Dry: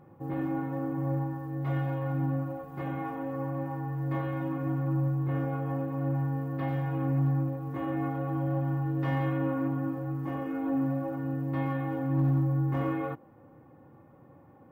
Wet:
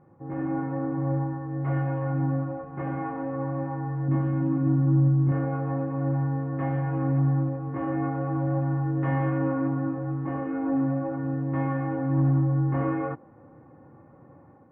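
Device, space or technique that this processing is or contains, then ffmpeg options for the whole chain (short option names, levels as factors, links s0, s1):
action camera in a waterproof case: -filter_complex "[0:a]asettb=1/sr,asplit=3[s0][s1][s2];[s0]atrim=end=4.084[s3];[s1]atrim=start=4.08:end=5.32,asetpts=PTS-STARTPTS,afade=t=in:d=0.004:c=qsin,afade=t=out:st=1.236:d=0.004:c=qsin,equalizer=f=125:t=o:w=1:g=3,equalizer=f=250:t=o:w=1:g=8,equalizer=f=500:t=o:w=1:g=-6,equalizer=f=1000:t=o:w=1:g=-3,equalizer=f=2000:t=o:w=1:g=-6[s4];[s2]atrim=start=5.316[s5];[s3][s4]acrossfade=d=0.004:c1=hsin:c2=qsin[s6];[s6][s5]acrossfade=d=0.004:c1=qsin:c2=hsin,lowpass=f=2100:w=0.5412,lowpass=f=2100:w=1.3066,dynaudnorm=f=250:g=3:m=2,volume=0.75" -ar 48000 -c:a aac -b:a 128k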